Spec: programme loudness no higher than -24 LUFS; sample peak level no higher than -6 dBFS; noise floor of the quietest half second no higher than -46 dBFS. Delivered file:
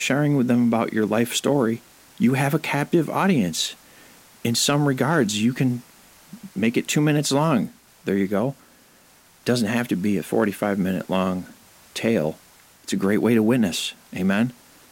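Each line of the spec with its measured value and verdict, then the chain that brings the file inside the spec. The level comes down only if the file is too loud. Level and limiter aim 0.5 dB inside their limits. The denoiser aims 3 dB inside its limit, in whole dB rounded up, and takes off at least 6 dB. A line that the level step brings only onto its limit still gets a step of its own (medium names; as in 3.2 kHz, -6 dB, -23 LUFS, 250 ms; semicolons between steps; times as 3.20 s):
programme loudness -22.0 LUFS: fail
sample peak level -7.5 dBFS: pass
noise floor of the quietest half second -54 dBFS: pass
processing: trim -2.5 dB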